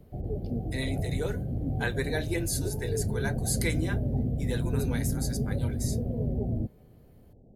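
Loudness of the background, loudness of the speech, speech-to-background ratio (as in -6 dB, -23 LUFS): -31.5 LUFS, -35.0 LUFS, -3.5 dB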